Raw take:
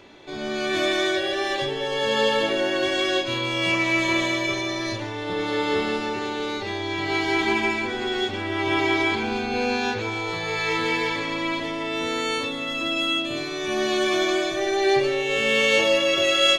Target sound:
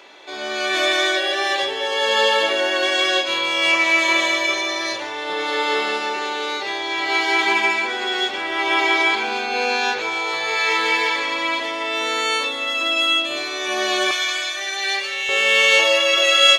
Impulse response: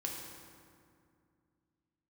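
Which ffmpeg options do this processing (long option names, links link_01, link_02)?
-af "asetnsamples=nb_out_samples=441:pad=0,asendcmd='14.11 highpass f 1500;15.29 highpass f 700',highpass=590,volume=6.5dB"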